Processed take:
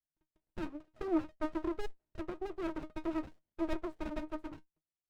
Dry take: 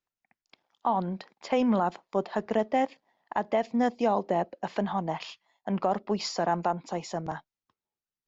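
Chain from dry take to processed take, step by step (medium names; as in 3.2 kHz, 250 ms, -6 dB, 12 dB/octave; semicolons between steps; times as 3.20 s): gliding tape speed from 148% -> 177%; pitch-class resonator D#, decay 0.12 s; sliding maximum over 33 samples; trim +3 dB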